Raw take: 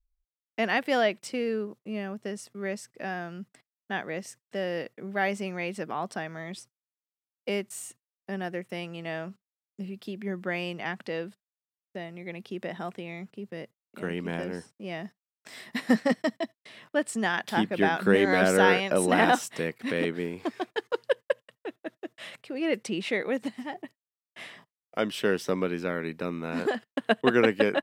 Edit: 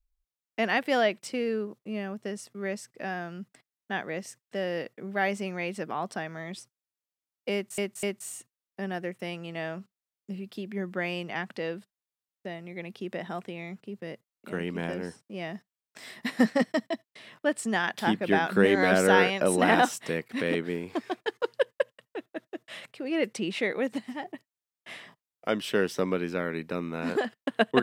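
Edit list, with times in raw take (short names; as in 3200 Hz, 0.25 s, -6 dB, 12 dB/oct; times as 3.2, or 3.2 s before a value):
7.53–7.78 loop, 3 plays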